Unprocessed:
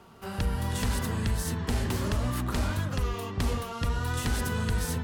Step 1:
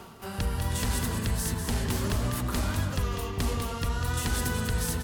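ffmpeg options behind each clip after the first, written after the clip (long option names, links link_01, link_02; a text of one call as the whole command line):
ffmpeg -i in.wav -af "highshelf=frequency=5200:gain=6,areverse,acompressor=mode=upward:threshold=-30dB:ratio=2.5,areverse,aecho=1:1:197:0.447,volume=-1dB" out.wav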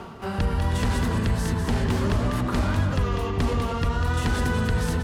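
ffmpeg -i in.wav -filter_complex "[0:a]aemphasis=mode=reproduction:type=75fm,bandreject=frequency=60:width_type=h:width=6,bandreject=frequency=120:width_type=h:width=6,asplit=2[link_01][link_02];[link_02]alimiter=level_in=2.5dB:limit=-24dB:level=0:latency=1,volume=-2.5dB,volume=-2dB[link_03];[link_01][link_03]amix=inputs=2:normalize=0,volume=2.5dB" out.wav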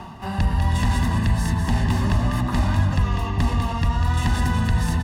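ffmpeg -i in.wav -af "aecho=1:1:1.1:0.69" out.wav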